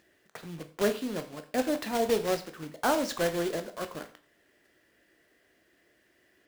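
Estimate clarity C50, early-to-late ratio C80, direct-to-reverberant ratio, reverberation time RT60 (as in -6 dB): 13.0 dB, 17.5 dB, 7.5 dB, 0.45 s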